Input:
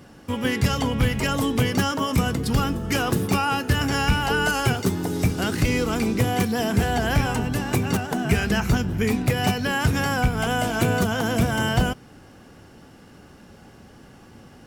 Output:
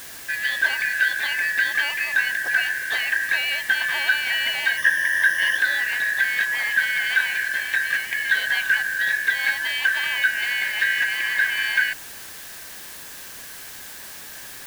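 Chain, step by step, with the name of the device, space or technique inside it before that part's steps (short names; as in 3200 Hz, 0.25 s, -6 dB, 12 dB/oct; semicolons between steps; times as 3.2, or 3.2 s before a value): split-band scrambled radio (four-band scrambler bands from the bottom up 4123; BPF 360–3100 Hz; white noise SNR 15 dB); 4.77–5.58 ripple EQ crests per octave 1.2, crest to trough 13 dB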